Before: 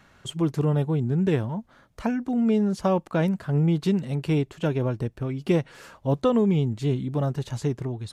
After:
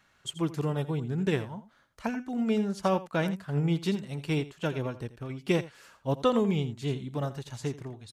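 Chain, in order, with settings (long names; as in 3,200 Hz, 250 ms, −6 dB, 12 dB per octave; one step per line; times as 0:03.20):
tilt shelving filter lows −4.5 dB
single-tap delay 84 ms −11.5 dB
expander for the loud parts 1.5 to 1, over −40 dBFS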